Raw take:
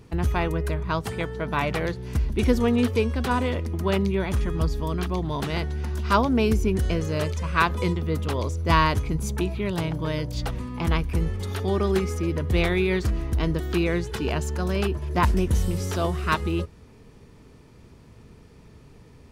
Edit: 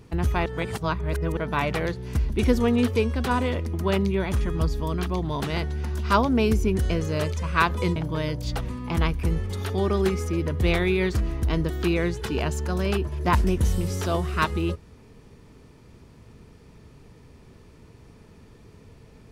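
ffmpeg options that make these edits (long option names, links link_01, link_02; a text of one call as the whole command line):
ffmpeg -i in.wav -filter_complex "[0:a]asplit=4[link_01][link_02][link_03][link_04];[link_01]atrim=end=0.462[link_05];[link_02]atrim=start=0.458:end=1.372,asetpts=PTS-STARTPTS,areverse[link_06];[link_03]atrim=start=1.368:end=7.962[link_07];[link_04]atrim=start=9.858[link_08];[link_05][link_06]acrossfade=duration=0.004:curve1=hsin:curve2=hsin[link_09];[link_09][link_07]acrossfade=duration=0.004:curve1=hsin:curve2=hsin[link_10];[link_10][link_08]acrossfade=duration=0.004:curve1=hsin:curve2=hsin" out.wav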